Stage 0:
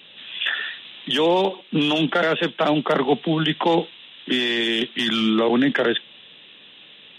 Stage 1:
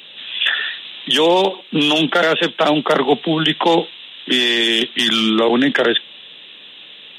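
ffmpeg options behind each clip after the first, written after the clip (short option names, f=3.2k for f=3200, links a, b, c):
-af "bass=f=250:g=-5,treble=f=4k:g=8,volume=5dB"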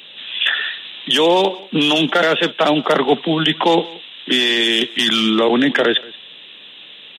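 -af "aecho=1:1:180:0.075"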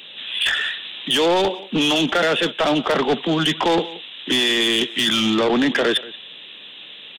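-af "asoftclip=type=tanh:threshold=-13dB"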